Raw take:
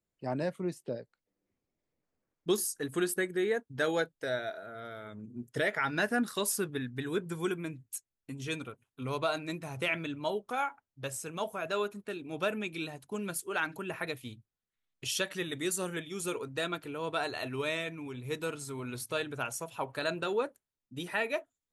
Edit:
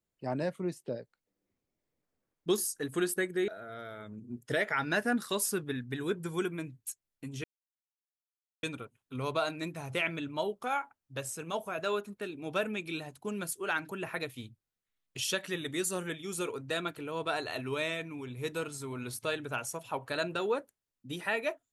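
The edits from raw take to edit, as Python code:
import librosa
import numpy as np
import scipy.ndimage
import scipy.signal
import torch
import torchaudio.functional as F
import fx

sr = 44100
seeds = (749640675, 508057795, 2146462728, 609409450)

y = fx.edit(x, sr, fx.cut(start_s=3.48, length_s=1.06),
    fx.insert_silence(at_s=8.5, length_s=1.19), tone=tone)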